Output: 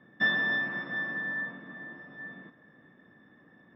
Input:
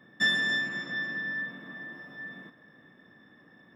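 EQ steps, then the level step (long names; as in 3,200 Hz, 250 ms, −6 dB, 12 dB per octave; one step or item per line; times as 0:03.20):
dynamic equaliser 880 Hz, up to +8 dB, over −47 dBFS, Q 0.97
high-frequency loss of the air 320 metres
0.0 dB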